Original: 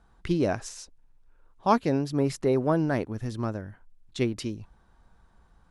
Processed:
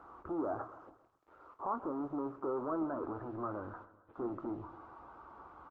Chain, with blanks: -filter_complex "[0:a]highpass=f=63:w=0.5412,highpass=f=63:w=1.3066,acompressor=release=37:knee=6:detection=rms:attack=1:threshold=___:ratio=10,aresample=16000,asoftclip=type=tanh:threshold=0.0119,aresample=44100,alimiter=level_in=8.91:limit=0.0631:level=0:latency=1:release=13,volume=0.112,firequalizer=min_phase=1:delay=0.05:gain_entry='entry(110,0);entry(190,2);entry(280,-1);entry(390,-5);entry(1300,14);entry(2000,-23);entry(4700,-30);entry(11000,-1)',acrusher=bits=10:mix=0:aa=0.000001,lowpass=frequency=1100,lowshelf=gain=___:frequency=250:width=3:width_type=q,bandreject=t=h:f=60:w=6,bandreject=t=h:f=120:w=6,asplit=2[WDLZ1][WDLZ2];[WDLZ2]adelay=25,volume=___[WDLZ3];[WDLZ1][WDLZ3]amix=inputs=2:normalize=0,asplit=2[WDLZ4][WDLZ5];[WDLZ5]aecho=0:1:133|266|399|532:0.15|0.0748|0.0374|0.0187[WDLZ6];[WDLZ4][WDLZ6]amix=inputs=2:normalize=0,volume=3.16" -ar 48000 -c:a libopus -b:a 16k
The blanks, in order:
0.02, -9.5, 0.282